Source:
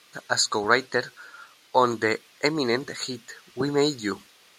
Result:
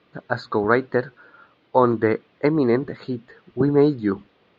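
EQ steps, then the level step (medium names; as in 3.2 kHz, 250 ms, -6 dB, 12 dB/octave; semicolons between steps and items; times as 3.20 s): low-pass 3.7 kHz 24 dB/octave; dynamic bell 1.4 kHz, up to +4 dB, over -35 dBFS, Q 1.3; tilt shelf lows +10 dB, about 850 Hz; 0.0 dB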